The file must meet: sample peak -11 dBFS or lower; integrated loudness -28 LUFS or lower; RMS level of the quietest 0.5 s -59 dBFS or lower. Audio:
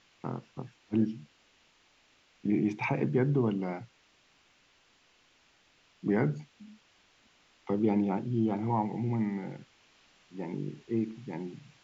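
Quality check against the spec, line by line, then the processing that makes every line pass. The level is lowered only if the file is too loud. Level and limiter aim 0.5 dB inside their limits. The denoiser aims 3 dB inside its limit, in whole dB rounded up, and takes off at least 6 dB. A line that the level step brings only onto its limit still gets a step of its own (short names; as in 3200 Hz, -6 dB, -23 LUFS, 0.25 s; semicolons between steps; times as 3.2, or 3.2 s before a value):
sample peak -16.0 dBFS: OK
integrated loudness -32.0 LUFS: OK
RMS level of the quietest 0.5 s -66 dBFS: OK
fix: none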